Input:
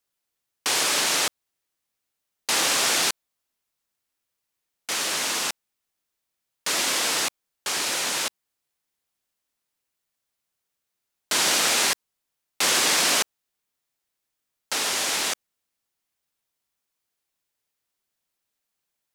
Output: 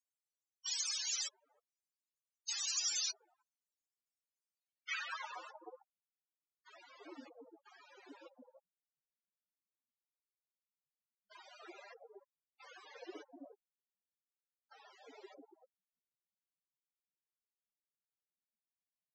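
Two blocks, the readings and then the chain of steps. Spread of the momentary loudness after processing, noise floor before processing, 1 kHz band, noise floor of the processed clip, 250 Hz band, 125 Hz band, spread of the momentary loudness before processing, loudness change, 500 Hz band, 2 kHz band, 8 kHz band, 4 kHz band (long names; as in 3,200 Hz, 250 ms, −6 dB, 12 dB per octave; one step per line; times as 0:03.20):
23 LU, −82 dBFS, −23.5 dB, below −85 dBFS, −20.5 dB, below −40 dB, 11 LU, −16.0 dB, −23.0 dB, −23.0 dB, −18.5 dB, −20.0 dB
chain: spectral peaks only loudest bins 16
band-pass filter sweep 6,600 Hz → 200 Hz, 0:04.49–0:05.80
multiband delay without the direct sound highs, lows 310 ms, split 690 Hz
level +3 dB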